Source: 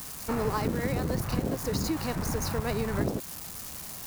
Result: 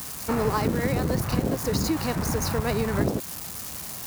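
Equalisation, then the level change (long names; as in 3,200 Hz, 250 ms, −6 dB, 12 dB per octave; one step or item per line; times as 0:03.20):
high-pass filter 43 Hz
+4.5 dB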